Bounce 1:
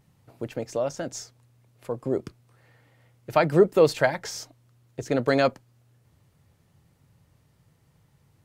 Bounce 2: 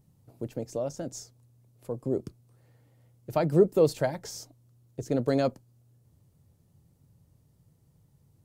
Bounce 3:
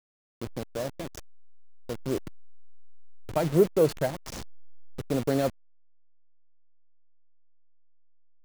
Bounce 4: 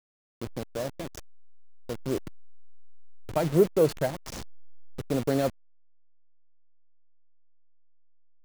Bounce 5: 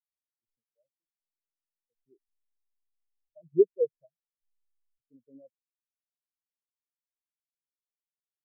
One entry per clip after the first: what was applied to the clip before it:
peaking EQ 1.9 kHz -13.5 dB 2.7 oct
send-on-delta sampling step -31 dBFS
no audible change
spectral contrast expander 4:1

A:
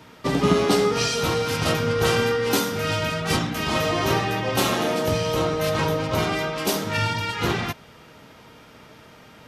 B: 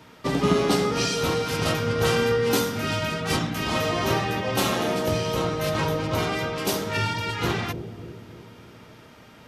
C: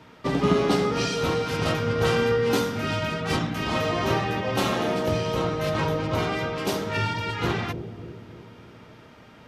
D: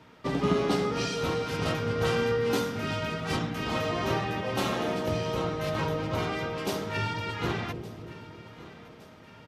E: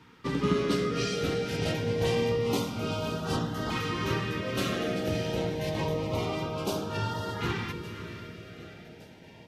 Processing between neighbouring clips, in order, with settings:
bucket-brigade echo 296 ms, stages 1024, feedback 54%, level -8 dB; trim -2 dB
treble shelf 6.2 kHz -11 dB
feedback delay 1165 ms, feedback 52%, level -18.5 dB; trim -4.5 dB
echo that smears into a reverb 538 ms, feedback 41%, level -11 dB; LFO notch saw up 0.27 Hz 600–2500 Hz

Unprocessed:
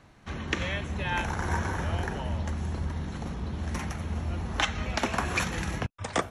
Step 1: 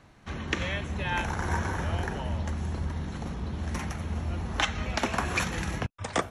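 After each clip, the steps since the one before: no audible change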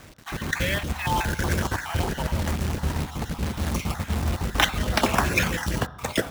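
random holes in the spectrogram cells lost 31%; companded quantiser 4-bit; on a send at -13 dB: reverberation RT60 1.1 s, pre-delay 3 ms; on the sum: trim +6.5 dB

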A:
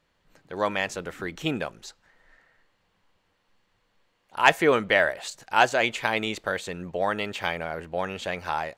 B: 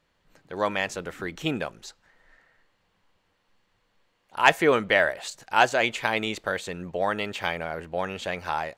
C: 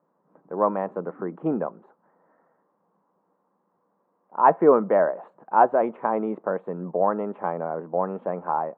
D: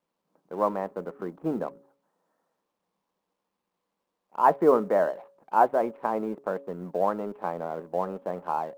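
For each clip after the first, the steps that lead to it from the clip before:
no audible change
elliptic band-pass 180–1100 Hz, stop band 60 dB; trim +5 dB
companding laws mixed up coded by A; de-hum 139.5 Hz, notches 4; trim -3 dB

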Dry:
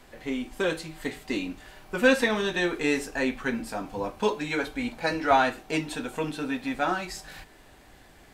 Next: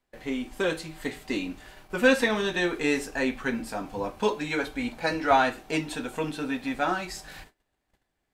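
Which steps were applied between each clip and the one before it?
gate -48 dBFS, range -26 dB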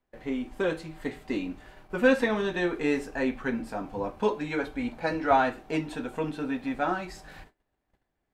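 treble shelf 2.6 kHz -11.5 dB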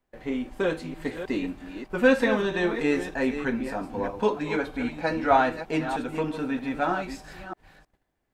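chunks repeated in reverse 314 ms, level -9.5 dB; trim +2 dB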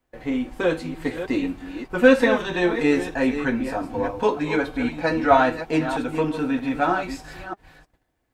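comb of notches 200 Hz; trim +5.5 dB

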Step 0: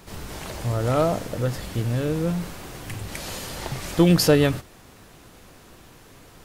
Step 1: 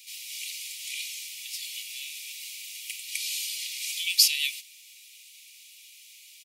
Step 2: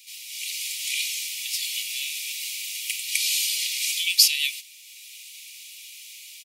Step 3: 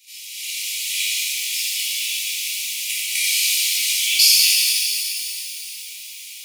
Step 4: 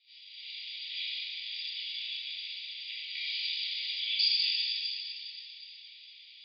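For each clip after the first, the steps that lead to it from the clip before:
steep high-pass 2.2 kHz 96 dB/octave; comb 2.1 ms, depth 31%; trim +4.5 dB
level rider gain up to 8 dB
transient shaper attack +3 dB, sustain -9 dB; pitch-shifted reverb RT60 3.1 s, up +12 st, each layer -8 dB, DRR -11 dB; trim -5.5 dB
rippled Chebyshev low-pass 4.9 kHz, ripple 9 dB; trim -6.5 dB

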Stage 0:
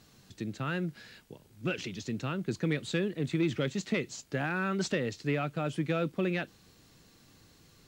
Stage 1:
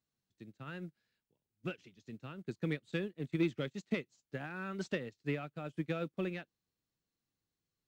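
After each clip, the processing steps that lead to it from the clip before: upward expansion 2.5:1, over -45 dBFS; trim -1.5 dB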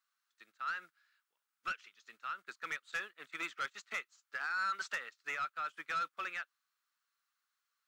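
resonant high-pass 1.3 kHz, resonance Q 4.4; saturation -34 dBFS, distortion -13 dB; trim +3.5 dB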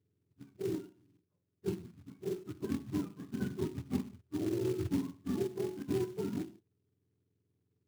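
spectrum inverted on a logarithmic axis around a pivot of 710 Hz; gated-style reverb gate 190 ms falling, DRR 8 dB; short-mantissa float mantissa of 2-bit; trim +2.5 dB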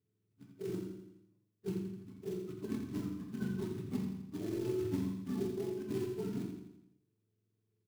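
on a send: feedback delay 84 ms, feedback 51%, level -7 dB; on the sum: simulated room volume 440 m³, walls furnished, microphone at 1.5 m; trim -5.5 dB

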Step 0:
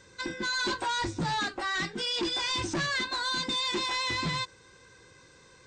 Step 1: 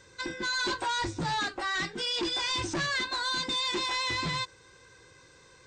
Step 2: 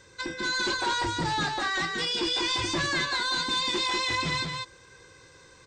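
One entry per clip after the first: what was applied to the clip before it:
peaking EQ 210 Hz -5 dB 0.63 oct
delay 194 ms -4 dB; trim +1.5 dB

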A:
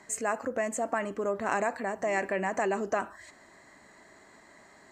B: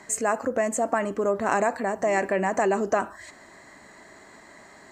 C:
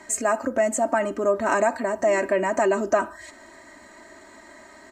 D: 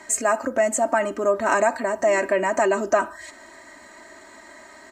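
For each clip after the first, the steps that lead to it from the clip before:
dynamic bell 2.4 kHz, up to -4 dB, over -45 dBFS, Q 0.89; trim +6.5 dB
comb 3.2 ms, depth 72%
bass shelf 440 Hz -5.5 dB; trim +3 dB

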